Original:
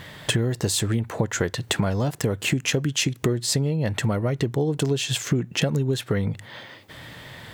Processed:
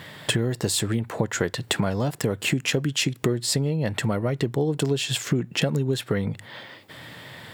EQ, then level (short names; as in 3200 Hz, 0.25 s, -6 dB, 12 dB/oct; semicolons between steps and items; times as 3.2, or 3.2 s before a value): HPF 110 Hz; notch 6200 Hz, Q 11; 0.0 dB